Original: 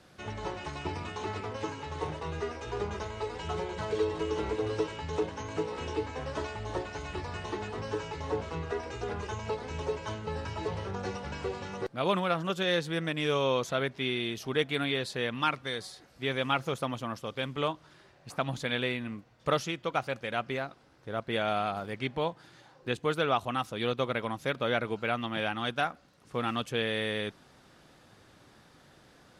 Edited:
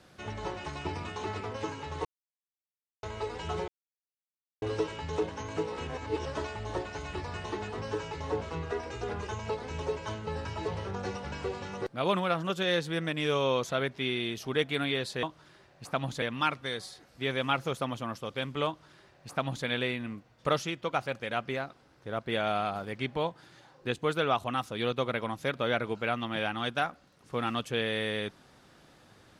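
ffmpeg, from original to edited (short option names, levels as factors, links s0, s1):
-filter_complex "[0:a]asplit=9[s0][s1][s2][s3][s4][s5][s6][s7][s8];[s0]atrim=end=2.05,asetpts=PTS-STARTPTS,afade=t=out:st=2.046:d=0.004:c=hsin[s9];[s1]atrim=start=2.05:end=3.03,asetpts=PTS-STARTPTS,volume=0[s10];[s2]atrim=start=3.03:end=3.68,asetpts=PTS-STARTPTS,afade=t=in:d=0.004:c=hsin,afade=t=out:st=0.646:d=0.004:c=hsin[s11];[s3]atrim=start=3.68:end=4.62,asetpts=PTS-STARTPTS,volume=0[s12];[s4]atrim=start=4.62:end=5.872,asetpts=PTS-STARTPTS,afade=t=in:d=0.004:c=hsin[s13];[s5]atrim=start=5.868:end=6.262,asetpts=PTS-STARTPTS,areverse[s14];[s6]atrim=start=6.258:end=15.232[s15];[s7]atrim=start=17.678:end=18.672[s16];[s8]atrim=start=15.228[s17];[s9][s10][s11][s12][s13]concat=n=5:v=0:a=1[s18];[s18][s14]acrossfade=d=0.004:c1=hsin:c2=hsin[s19];[s19][s15]acrossfade=d=0.004:c1=hsin:c2=hsin[s20];[s20][s16]acrossfade=d=0.004:c1=hsin:c2=hsin[s21];[s21][s17]acrossfade=d=0.004:c1=hsin:c2=hsin"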